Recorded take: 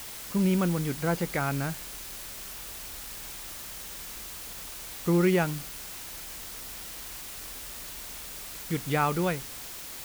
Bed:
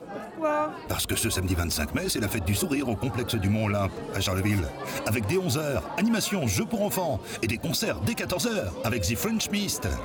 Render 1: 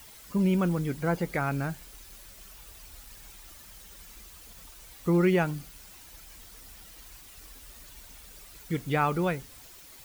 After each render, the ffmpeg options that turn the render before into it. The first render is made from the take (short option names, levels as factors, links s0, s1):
-af "afftdn=nr=11:nf=-41"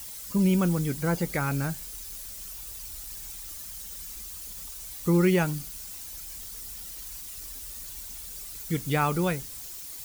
-af "bass=f=250:g=3,treble=f=4000:g=11,bandreject=f=690:w=21"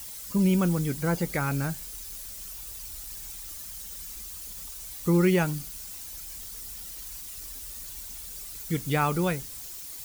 -af anull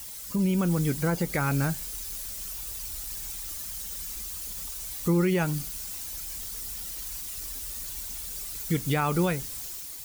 -af "alimiter=limit=0.106:level=0:latency=1:release=174,dynaudnorm=f=130:g=7:m=1.5"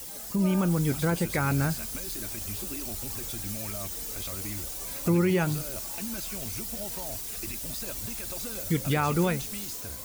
-filter_complex "[1:a]volume=0.2[s0];[0:a][s0]amix=inputs=2:normalize=0"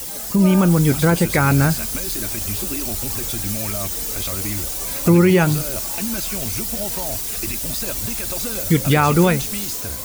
-af "volume=3.35"